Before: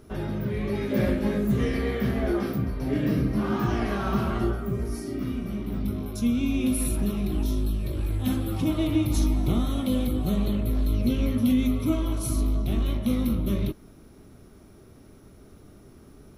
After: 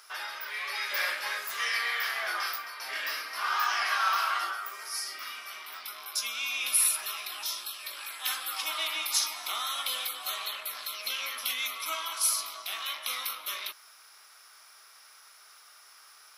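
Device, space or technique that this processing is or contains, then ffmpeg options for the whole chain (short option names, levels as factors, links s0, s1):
headphones lying on a table: -af "highpass=f=1100:w=0.5412,highpass=f=1100:w=1.3066,equalizer=f=5000:t=o:w=0.23:g=9.5,volume=2.66"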